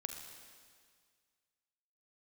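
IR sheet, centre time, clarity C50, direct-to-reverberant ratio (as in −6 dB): 47 ms, 5.0 dB, 4.5 dB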